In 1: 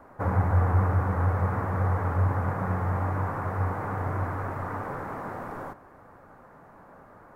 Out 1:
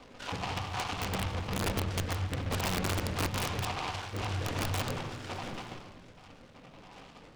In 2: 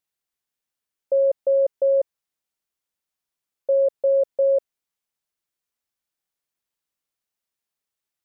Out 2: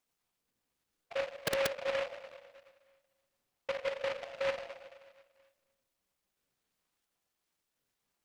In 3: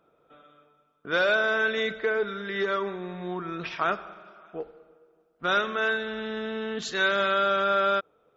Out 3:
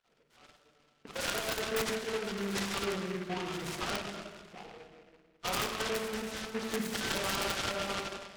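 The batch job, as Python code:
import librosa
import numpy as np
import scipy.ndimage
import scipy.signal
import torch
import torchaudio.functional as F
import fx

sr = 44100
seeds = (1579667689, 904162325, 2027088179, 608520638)

p1 = fx.spec_dropout(x, sr, seeds[0], share_pct=58)
p2 = fx.peak_eq(p1, sr, hz=6800.0, db=-4.0, octaves=1.8)
p3 = fx.over_compress(p2, sr, threshold_db=-30.0, ratio=-1.0)
p4 = p3 + fx.echo_single(p3, sr, ms=248, db=-21.0, dry=0)
p5 = fx.room_shoebox(p4, sr, seeds[1], volume_m3=1100.0, walls='mixed', distance_m=1.9)
p6 = (np.mod(10.0 ** (19.5 / 20.0) * p5 + 1.0, 2.0) - 1.0) / 10.0 ** (19.5 / 20.0)
p7 = fx.noise_mod_delay(p6, sr, seeds[2], noise_hz=1600.0, depth_ms=0.14)
y = p7 * 10.0 ** (-5.0 / 20.0)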